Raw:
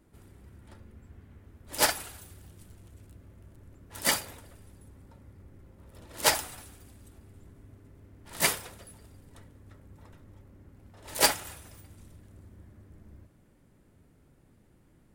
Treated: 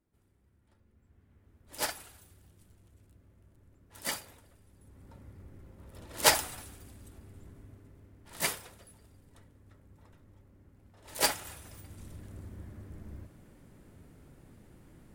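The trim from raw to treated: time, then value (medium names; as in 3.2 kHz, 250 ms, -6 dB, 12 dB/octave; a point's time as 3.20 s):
0.74 s -17 dB
1.54 s -9 dB
4.68 s -9 dB
5.14 s +1 dB
7.55 s +1 dB
8.47 s -6 dB
11.13 s -6 dB
12.22 s +6 dB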